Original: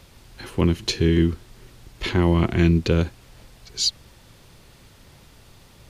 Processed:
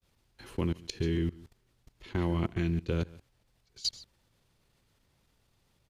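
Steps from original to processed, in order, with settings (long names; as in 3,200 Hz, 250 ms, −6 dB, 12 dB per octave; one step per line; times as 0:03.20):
single-tap delay 142 ms −14 dB
downward expander −42 dBFS
output level in coarse steps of 21 dB
level −7.5 dB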